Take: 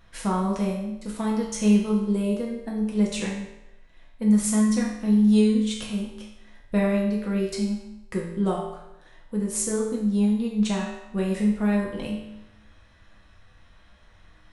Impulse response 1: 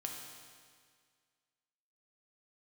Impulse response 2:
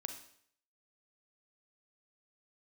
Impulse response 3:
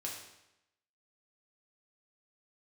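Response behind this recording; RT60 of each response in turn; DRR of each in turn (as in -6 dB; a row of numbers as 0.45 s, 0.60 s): 3; 1.9 s, 0.60 s, 0.90 s; 0.0 dB, 6.0 dB, -2.5 dB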